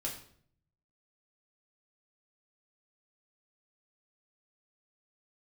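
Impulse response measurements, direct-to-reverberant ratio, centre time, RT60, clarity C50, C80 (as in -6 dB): -3.0 dB, 26 ms, 0.60 s, 7.5 dB, 11.0 dB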